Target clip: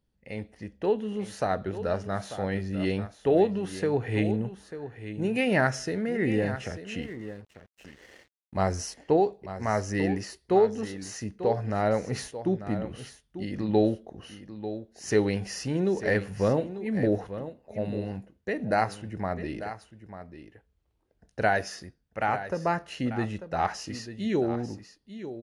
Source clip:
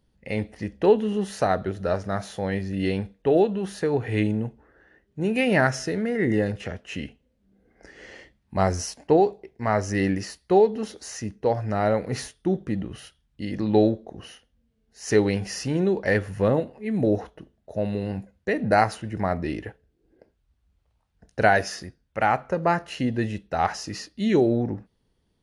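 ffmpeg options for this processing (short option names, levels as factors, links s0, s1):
-filter_complex "[0:a]dynaudnorm=f=130:g=21:m=2.82,aecho=1:1:893:0.251,asettb=1/sr,asplit=3[s0][s1][s2];[s0]atrim=end=7.024[s3];[s1]atrim=start=7.02:end=8.57,asetpts=PTS-STARTPTS,afade=t=in:d=0.004:c=qsin,afade=t=out:st=1.546:d=0.004:c=qsin,aeval=exprs='sgn(val(0))*max(abs(val(0))-0.00562,0)':c=same[s4];[s2]atrim=start=8.566[s5];[s3][s4]acrossfade=d=0.004:c1=hsin:c2=qsin[s6];[s6][s5]acrossfade=d=0.004:c1=qsin:c2=hsin,volume=0.355"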